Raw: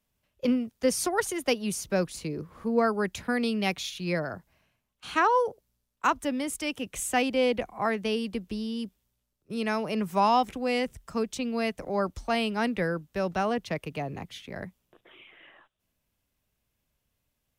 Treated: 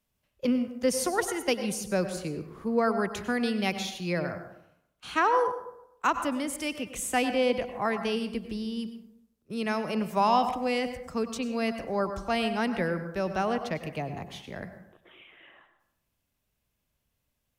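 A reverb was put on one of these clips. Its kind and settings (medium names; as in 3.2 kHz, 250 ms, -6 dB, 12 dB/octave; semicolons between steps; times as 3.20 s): plate-style reverb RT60 0.79 s, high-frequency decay 0.45×, pre-delay 85 ms, DRR 9 dB; trim -1 dB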